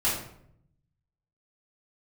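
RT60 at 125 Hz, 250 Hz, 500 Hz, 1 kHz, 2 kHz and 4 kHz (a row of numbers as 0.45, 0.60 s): 1.3, 0.95, 0.75, 0.65, 0.55, 0.45 s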